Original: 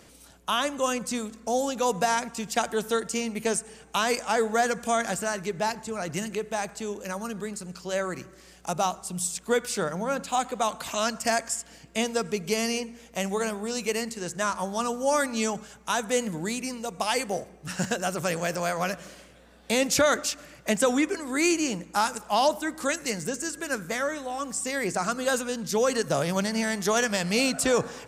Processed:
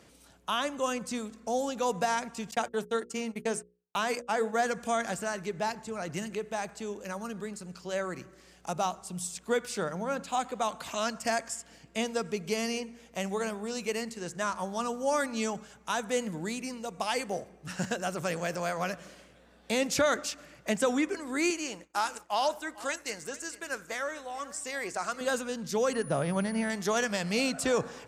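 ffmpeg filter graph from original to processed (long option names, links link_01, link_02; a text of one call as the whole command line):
ffmpeg -i in.wav -filter_complex "[0:a]asettb=1/sr,asplit=3[link_01][link_02][link_03];[link_01]atrim=end=2.514[link_04];[link_02]atrim=start=2.51:end=4.59,asetpts=PTS-STARTPTS,afade=type=in:duration=0.004:curve=qsin,afade=type=out:start_time=2.076:duration=0.004:curve=qsin,agate=range=-46dB:threshold=-34dB:ratio=16:release=100:detection=peak,equalizer=frequency=4800:width_type=o:width=1.4:gain=-3,bandreject=frequency=60:width_type=h:width=6,bandreject=frequency=120:width_type=h:width=6,bandreject=frequency=180:width_type=h:width=6,bandreject=frequency=240:width_type=h:width=6,bandreject=frequency=300:width_type=h:width=6,bandreject=frequency=360:width_type=h:width=6,bandreject=frequency=420:width_type=h:width=6,bandreject=frequency=480:width_type=h:width=6,bandreject=frequency=540:width_type=h:width=6[link_05];[link_03]atrim=start=4.586[link_06];[link_04][link_05]acrossfade=duration=0.004:curve1=hsin:curve2=qsin[link_07];[link_07][link_06]acrossfade=duration=0.004:curve1=qsin:curve2=hsin,asettb=1/sr,asplit=3[link_08][link_09][link_10];[link_08]atrim=end=21.504[link_11];[link_09]atrim=start=21.5:end=25.21,asetpts=PTS-STARTPTS,afade=type=in:duration=0.004:curve=qsin,afade=type=out:start_time=3.706:duration=0.004:curve=qsin,agate=range=-33dB:threshold=-39dB:ratio=3:release=100:detection=peak,equalizer=frequency=170:width=0.72:gain=-12.5,aecho=1:1:447:0.119,atrim=end_sample=163611[link_12];[link_10]atrim=start=25.206[link_13];[link_11][link_12]acrossfade=duration=0.004:curve1=hsin:curve2=qsin[link_14];[link_14][link_13]acrossfade=duration=0.004:curve1=qsin:curve2=hsin,asettb=1/sr,asplit=3[link_15][link_16][link_17];[link_15]atrim=end=25.934[link_18];[link_16]atrim=start=25.93:end=26.7,asetpts=PTS-STARTPTS,afade=type=in:duration=0.004:curve=qsin,afade=type=out:start_time=0.766:duration=0.004:curve=qsin,bass=frequency=250:gain=3,treble=frequency=4000:gain=-13,aeval=exprs='val(0)+0.0126*sin(2*PI*9700*n/s)':channel_layout=same[link_19];[link_17]atrim=start=26.696[link_20];[link_18][link_19]acrossfade=duration=0.004:curve1=hsin:curve2=qsin[link_21];[link_21][link_20]acrossfade=duration=0.004:curve1=qsin:curve2=hsin,highpass=53,highshelf=frequency=7000:gain=-6,volume=-4dB" out.wav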